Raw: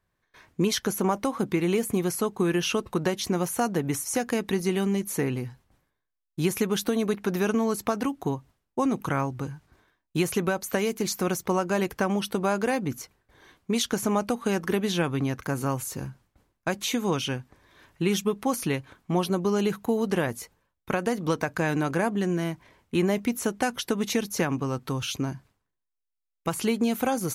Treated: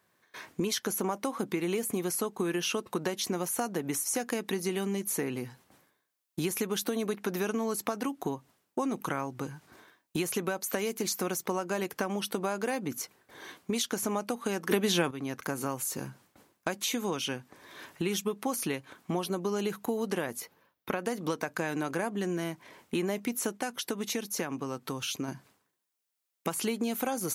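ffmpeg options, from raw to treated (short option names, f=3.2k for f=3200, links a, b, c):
-filter_complex "[0:a]asettb=1/sr,asplit=3[a][b][c];[a]atrim=end=20.404[d];[b]atrim=start=20.4:end=21.05,asetpts=PTS-STARTPTS,afade=t=in:d=0.004:c=qsin,afade=t=out:st=0.646:d=0.004:c=qsin,equalizer=f=8.1k:t=o:w=0.75:g=-12.5[e];[c]atrim=start=21.046[f];[d][e]acrossfade=d=0.004:c1=hsin:c2=qsin[g];[g][f]acrossfade=d=0.004:c1=qsin:c2=hsin,asplit=5[h][i][j][k][l];[h]atrim=end=14.712[m];[i]atrim=start=14.708:end=15.112,asetpts=PTS-STARTPTS,volume=12dB[n];[j]atrim=start=15.108:end=23.572[o];[k]atrim=start=23.568:end=25.282,asetpts=PTS-STARTPTS,volume=-4.5dB[p];[l]atrim=start=25.278[q];[m][n]acrossfade=d=0.004:c1=hsin:c2=hsin[r];[r][o]acrossfade=d=0.004:c1=hsin:c2=hsin[s];[s][p]acrossfade=d=0.004:c1=hsin:c2=hsin[t];[t][q]acrossfade=d=0.004:c1=hsin:c2=hsin,highpass=200,highshelf=f=6.2k:g=5,acompressor=threshold=-43dB:ratio=2.5,volume=8dB"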